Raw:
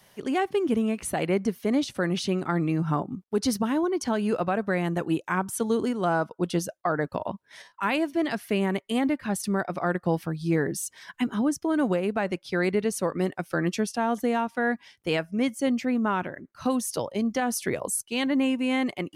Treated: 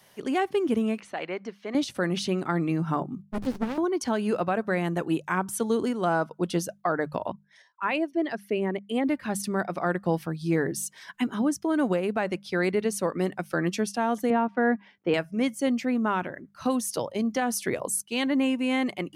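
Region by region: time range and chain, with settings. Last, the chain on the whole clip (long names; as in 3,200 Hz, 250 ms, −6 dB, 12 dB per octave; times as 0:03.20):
0:01.00–0:01.75: high-pass filter 900 Hz 6 dB per octave + high-frequency loss of the air 160 metres
0:03.22–0:03.78: high-pass filter 180 Hz + windowed peak hold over 65 samples
0:07.32–0:09.08: spectral envelope exaggerated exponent 1.5 + parametric band 6,100 Hz +3.5 dB 0.74 octaves + expander for the loud parts, over −42 dBFS
0:14.30–0:15.14: band-pass filter 200–2,100 Hz + low-shelf EQ 410 Hz +8 dB
whole clip: low-shelf EQ 63 Hz −7.5 dB; mains-hum notches 50/100/150/200 Hz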